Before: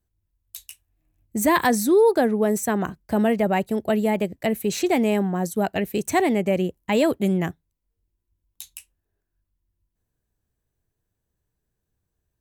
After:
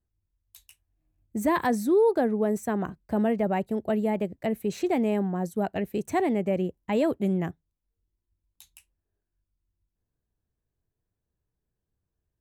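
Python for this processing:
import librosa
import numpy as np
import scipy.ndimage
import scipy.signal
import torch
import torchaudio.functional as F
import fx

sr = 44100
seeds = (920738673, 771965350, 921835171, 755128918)

y = fx.high_shelf(x, sr, hz=2100.0, db=-10.0)
y = F.gain(torch.from_numpy(y), -4.0).numpy()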